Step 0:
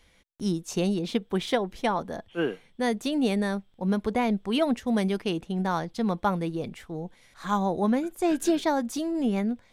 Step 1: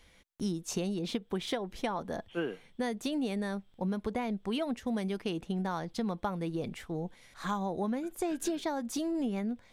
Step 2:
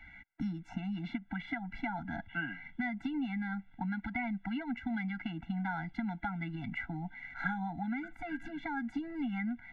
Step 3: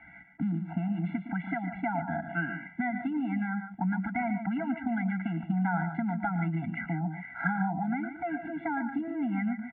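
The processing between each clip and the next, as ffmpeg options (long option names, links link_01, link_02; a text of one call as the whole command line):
ffmpeg -i in.wav -af "acompressor=threshold=-30dB:ratio=6" out.wav
ffmpeg -i in.wav -filter_complex "[0:a]acrossover=split=200|1500[link_01][link_02][link_03];[link_01]acompressor=threshold=-48dB:ratio=4[link_04];[link_02]acompressor=threshold=-42dB:ratio=4[link_05];[link_03]acompressor=threshold=-50dB:ratio=4[link_06];[link_04][link_05][link_06]amix=inputs=3:normalize=0,lowpass=frequency=1900:width_type=q:width=6.1,afftfilt=real='re*eq(mod(floor(b*sr/1024/330),2),0)':imag='im*eq(mod(floor(b*sr/1024/330),2),0)':win_size=1024:overlap=0.75,volume=5.5dB" out.wav
ffmpeg -i in.wav -filter_complex "[0:a]highpass=110,equalizer=frequency=170:width_type=q:width=4:gain=7,equalizer=frequency=400:width_type=q:width=4:gain=7,equalizer=frequency=660:width_type=q:width=4:gain=8,equalizer=frequency=1200:width_type=q:width=4:gain=5,lowpass=frequency=2200:width=0.5412,lowpass=frequency=2200:width=1.3066,asplit=2[link_01][link_02];[link_02]aecho=0:1:113.7|145.8:0.251|0.316[link_03];[link_01][link_03]amix=inputs=2:normalize=0,volume=3dB" out.wav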